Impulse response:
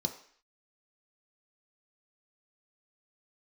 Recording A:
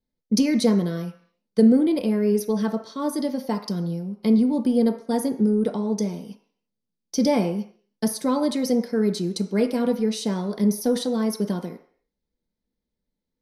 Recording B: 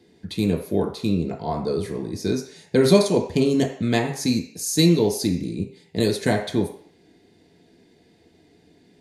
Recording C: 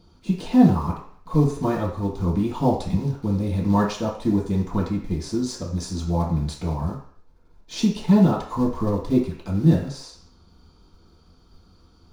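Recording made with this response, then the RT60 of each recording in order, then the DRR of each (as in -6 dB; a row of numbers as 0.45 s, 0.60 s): A; 0.55 s, 0.55 s, 0.55 s; 4.0 dB, -1.5 dB, -7.0 dB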